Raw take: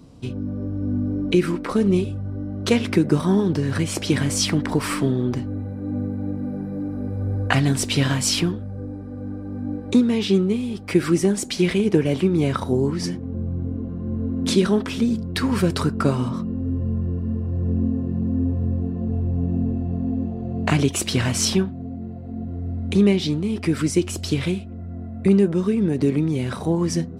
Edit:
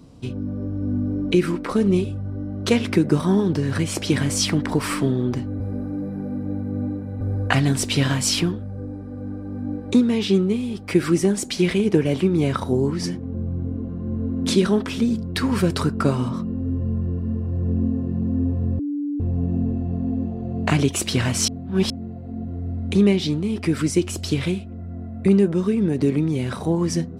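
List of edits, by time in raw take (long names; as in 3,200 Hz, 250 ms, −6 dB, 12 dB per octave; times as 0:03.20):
0:05.60–0:07.21: reverse
0:18.79–0:19.20: beep over 290 Hz −22.5 dBFS
0:21.48–0:21.90: reverse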